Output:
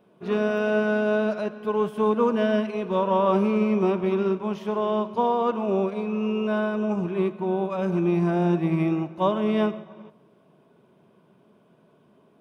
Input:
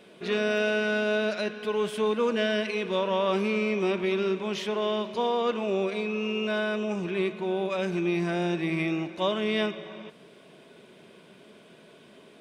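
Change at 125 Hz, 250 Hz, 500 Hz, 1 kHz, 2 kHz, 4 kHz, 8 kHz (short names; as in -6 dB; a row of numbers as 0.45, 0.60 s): +7.0 dB, +5.5 dB, +3.0 dB, +5.5 dB, -3.0 dB, -8.0 dB, n/a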